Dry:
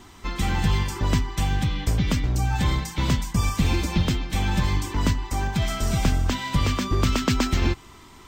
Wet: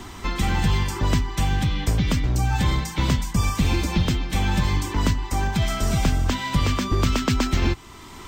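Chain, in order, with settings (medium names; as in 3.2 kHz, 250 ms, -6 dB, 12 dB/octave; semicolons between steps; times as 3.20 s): three bands compressed up and down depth 40%; trim +1 dB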